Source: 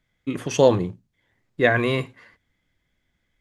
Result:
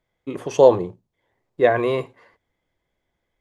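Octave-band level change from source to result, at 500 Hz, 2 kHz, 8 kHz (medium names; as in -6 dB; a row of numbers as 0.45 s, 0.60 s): +4.0 dB, -5.5 dB, no reading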